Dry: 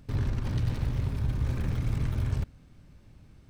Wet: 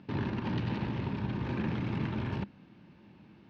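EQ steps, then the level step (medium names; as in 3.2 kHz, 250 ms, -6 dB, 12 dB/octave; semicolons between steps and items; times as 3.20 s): cabinet simulation 160–4400 Hz, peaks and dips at 200 Hz +10 dB, 340 Hz +8 dB, 910 Hz +9 dB, 1.7 kHz +4 dB, 2.7 kHz +6 dB; 0.0 dB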